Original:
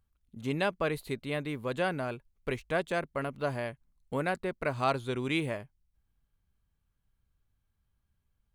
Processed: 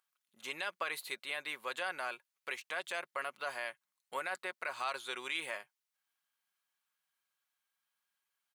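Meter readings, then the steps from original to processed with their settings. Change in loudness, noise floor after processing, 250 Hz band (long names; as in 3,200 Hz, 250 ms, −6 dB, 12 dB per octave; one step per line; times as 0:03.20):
−6.5 dB, below −85 dBFS, −21.5 dB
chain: high-pass filter 1,100 Hz 12 dB per octave
comb filter 5.5 ms, depth 33%
brickwall limiter −28.5 dBFS, peak gain reduction 11.5 dB
level +3.5 dB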